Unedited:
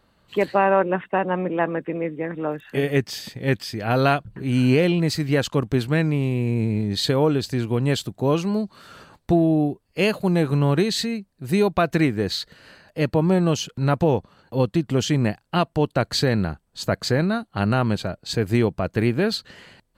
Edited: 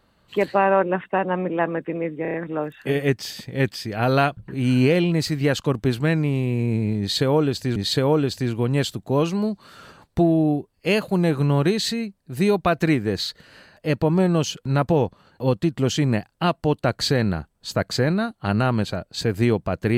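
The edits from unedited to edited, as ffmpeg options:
-filter_complex "[0:a]asplit=6[s0][s1][s2][s3][s4][s5];[s0]atrim=end=2.252[s6];[s1]atrim=start=2.218:end=2.252[s7];[s2]atrim=start=2.218:end=2.252[s8];[s3]atrim=start=2.218:end=2.252[s9];[s4]atrim=start=2.218:end=7.642[s10];[s5]atrim=start=6.878[s11];[s6][s7]acrossfade=d=0.004:c1=hsin:c2=hsin[s12];[s12][s8]acrossfade=d=0.004:c1=hsin:c2=hsin[s13];[s13][s9]acrossfade=d=0.004:c1=hsin:c2=hsin[s14];[s14][s10]acrossfade=d=0.004:c1=hsin:c2=hsin[s15];[s15][s11]acrossfade=d=0.004:c1=hsin:c2=hsin"

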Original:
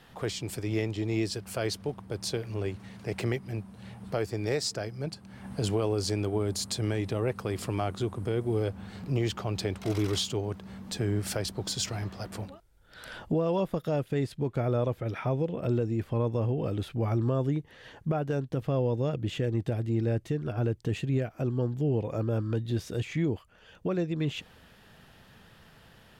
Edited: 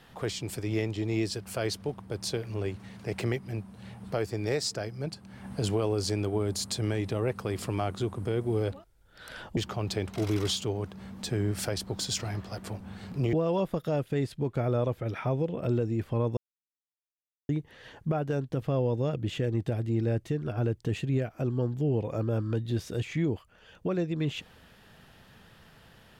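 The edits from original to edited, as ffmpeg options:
-filter_complex "[0:a]asplit=7[s0][s1][s2][s3][s4][s5][s6];[s0]atrim=end=8.722[s7];[s1]atrim=start=12.478:end=13.332[s8];[s2]atrim=start=9.248:end=12.482[s9];[s3]atrim=start=8.718:end=9.252[s10];[s4]atrim=start=13.328:end=16.37,asetpts=PTS-STARTPTS,afade=t=out:st=3.038:d=0.004:c=hsin[s11];[s5]atrim=start=16.37:end=17.49,asetpts=PTS-STARTPTS,volume=0[s12];[s6]atrim=start=17.49,asetpts=PTS-STARTPTS,afade=t=in:d=0.004:c=hsin[s13];[s7][s8]acrossfade=d=0.004:c1=hsin:c2=hsin[s14];[s14][s9]acrossfade=d=0.004:c1=hsin:c2=hsin[s15];[s15][s10]acrossfade=d=0.004:c1=hsin:c2=hsin[s16];[s11][s12][s13]concat=n=3:v=0:a=1[s17];[s16][s17]acrossfade=d=0.004:c1=hsin:c2=hsin"

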